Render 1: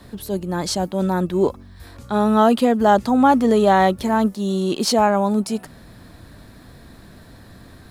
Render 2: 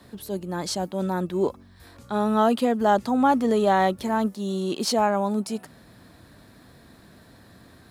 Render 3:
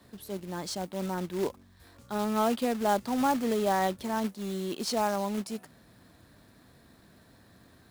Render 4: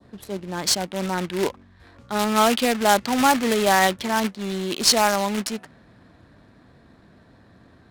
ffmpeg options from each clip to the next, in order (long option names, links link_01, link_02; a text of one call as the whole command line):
ffmpeg -i in.wav -af "highpass=frequency=120:poles=1,volume=-5dB" out.wav
ffmpeg -i in.wav -af "acrusher=bits=3:mode=log:mix=0:aa=0.000001,volume=-7dB" out.wav
ffmpeg -i in.wav -af "adynamicequalizer=threshold=0.00631:dfrequency=2100:dqfactor=0.83:tfrequency=2100:tqfactor=0.83:attack=5:release=100:ratio=0.375:range=3:mode=boostabove:tftype=bell,crystalizer=i=4.5:c=0,adynamicsmooth=sensitivity=5:basefreq=1600,volume=6dB" out.wav